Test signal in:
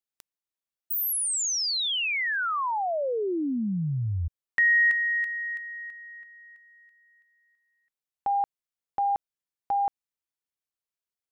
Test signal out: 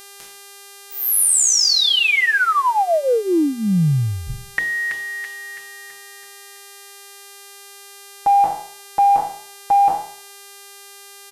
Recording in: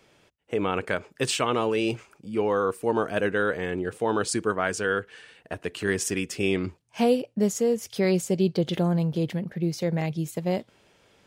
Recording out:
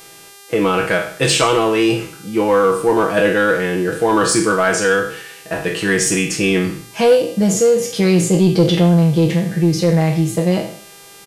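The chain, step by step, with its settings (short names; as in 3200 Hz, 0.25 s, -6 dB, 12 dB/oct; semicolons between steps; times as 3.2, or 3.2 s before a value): spectral trails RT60 0.53 s; LPF 12000 Hz 24 dB/oct; comb 6.1 ms, depth 75%; soft clip -11.5 dBFS; buzz 400 Hz, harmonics 33, -50 dBFS -1 dB/oct; gain +8 dB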